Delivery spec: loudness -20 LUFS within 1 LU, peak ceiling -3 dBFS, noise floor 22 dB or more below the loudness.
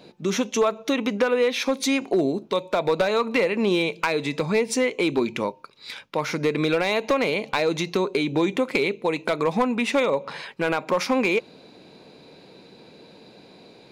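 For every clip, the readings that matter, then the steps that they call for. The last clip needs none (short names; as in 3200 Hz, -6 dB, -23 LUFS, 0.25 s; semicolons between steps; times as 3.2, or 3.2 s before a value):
clipped 0.4%; flat tops at -13.5 dBFS; loudness -23.5 LUFS; peak -13.5 dBFS; loudness target -20.0 LUFS
-> clip repair -13.5 dBFS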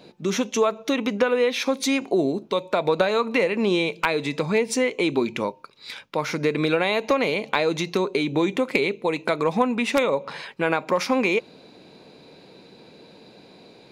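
clipped 0.0%; loudness -23.5 LUFS; peak -4.5 dBFS; loudness target -20.0 LUFS
-> gain +3.5 dB; limiter -3 dBFS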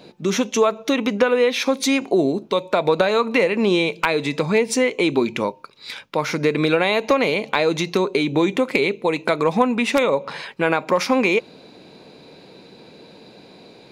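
loudness -20.0 LUFS; peak -3.0 dBFS; noise floor -47 dBFS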